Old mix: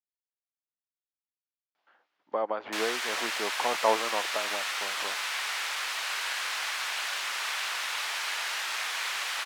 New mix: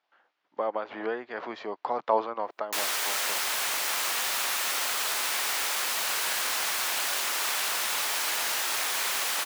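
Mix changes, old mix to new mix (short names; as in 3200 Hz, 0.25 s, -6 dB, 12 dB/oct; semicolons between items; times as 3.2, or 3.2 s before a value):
speech: entry -1.75 s; background: remove band-pass 2100 Hz, Q 0.63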